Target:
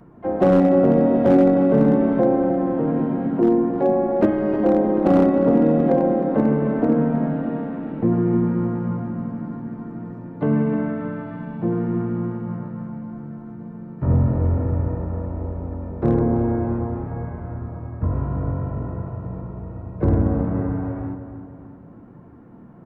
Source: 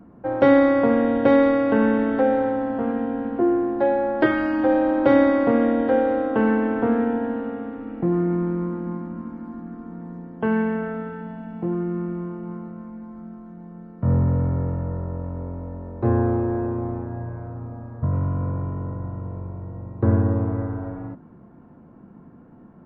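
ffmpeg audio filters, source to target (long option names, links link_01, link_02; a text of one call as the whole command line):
ffmpeg -i in.wav -filter_complex "[0:a]lowshelf=frequency=100:gain=-5.5,acrossover=split=770[link_01][link_02];[link_02]acompressor=threshold=-41dB:ratio=20[link_03];[link_01][link_03]amix=inputs=2:normalize=0,asplit=3[link_04][link_05][link_06];[link_05]asetrate=29433,aresample=44100,atempo=1.49831,volume=-4dB[link_07];[link_06]asetrate=58866,aresample=44100,atempo=0.749154,volume=-11dB[link_08];[link_04][link_07][link_08]amix=inputs=3:normalize=0,flanger=delay=1.7:depth=8.2:regen=-58:speed=0.45:shape=triangular,asoftclip=type=hard:threshold=-14.5dB,asplit=2[link_09][link_10];[link_10]adelay=310,lowpass=frequency=2800:poles=1,volume=-10dB,asplit=2[link_11][link_12];[link_12]adelay=310,lowpass=frequency=2800:poles=1,volume=0.48,asplit=2[link_13][link_14];[link_14]adelay=310,lowpass=frequency=2800:poles=1,volume=0.48,asplit=2[link_15][link_16];[link_16]adelay=310,lowpass=frequency=2800:poles=1,volume=0.48,asplit=2[link_17][link_18];[link_18]adelay=310,lowpass=frequency=2800:poles=1,volume=0.48[link_19];[link_09][link_11][link_13][link_15][link_17][link_19]amix=inputs=6:normalize=0,volume=5.5dB" out.wav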